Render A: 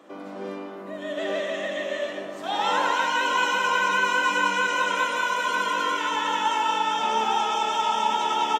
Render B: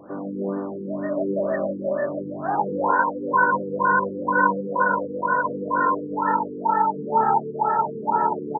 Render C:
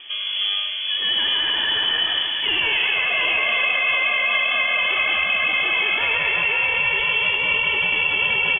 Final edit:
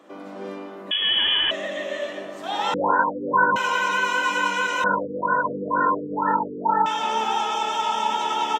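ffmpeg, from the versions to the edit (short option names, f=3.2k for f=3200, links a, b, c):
-filter_complex "[1:a]asplit=2[a][b];[0:a]asplit=4[c][d][e][f];[c]atrim=end=0.912[g];[2:a]atrim=start=0.908:end=1.512[h];[d]atrim=start=1.508:end=2.742[i];[a]atrim=start=2.738:end=3.562[j];[e]atrim=start=3.558:end=4.842[k];[b]atrim=start=4.838:end=6.862[l];[f]atrim=start=6.858[m];[g][h]acrossfade=d=0.004:c1=hsin:c2=hsin[n];[n][i]acrossfade=d=0.004:c1=hsin:c2=hsin[o];[o][j]acrossfade=d=0.004:c1=hsin:c2=hsin[p];[p][k]acrossfade=d=0.004:c1=hsin:c2=hsin[q];[q][l]acrossfade=d=0.004:c1=hsin:c2=hsin[r];[r][m]acrossfade=d=0.004:c1=hsin:c2=hsin"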